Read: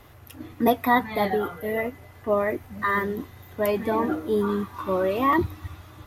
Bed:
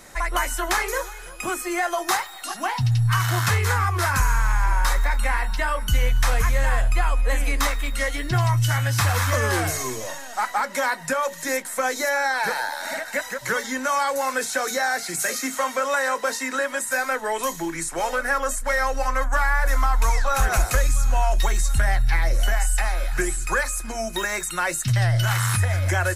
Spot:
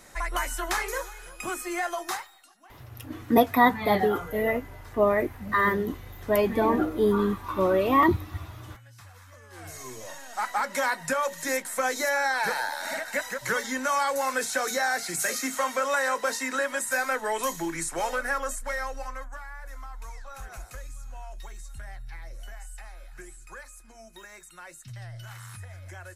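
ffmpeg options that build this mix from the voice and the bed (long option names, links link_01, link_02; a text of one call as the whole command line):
ffmpeg -i stem1.wav -i stem2.wav -filter_complex "[0:a]adelay=2700,volume=1dB[link_01];[1:a]volume=20.5dB,afade=type=out:start_time=1.86:duration=0.64:silence=0.0668344,afade=type=in:start_time=9.5:duration=1.19:silence=0.0501187,afade=type=out:start_time=17.87:duration=1.54:silence=0.125893[link_02];[link_01][link_02]amix=inputs=2:normalize=0" out.wav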